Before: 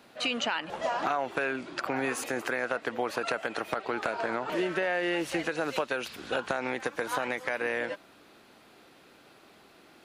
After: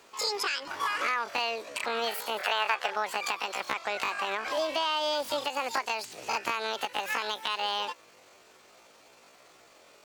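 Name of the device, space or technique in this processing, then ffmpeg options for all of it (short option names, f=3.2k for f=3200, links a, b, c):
chipmunk voice: -filter_complex "[0:a]asetrate=76340,aresample=44100,atempo=0.577676,asettb=1/sr,asplit=3[a][b][c];[a]atrim=end=2.384[d];[b]atrim=start=2.38:end=2.96,asetpts=PTS-STARTPTS,afade=t=in:d=0.004:c=qsin,afade=t=out:st=0.576:d=0.004:c=qsin,equalizer=f=250:t=o:w=0.67:g=-10,equalizer=f=630:t=o:w=0.67:g=5,equalizer=f=1.6k:t=o:w=0.67:g=11[e];[c]atrim=start=2.956[f];[d][e]acrossfade=d=0.004:c1=hsin:c2=qsin[g];[g][f]acrossfade=d=0.004:c1=qsin:c2=hsin"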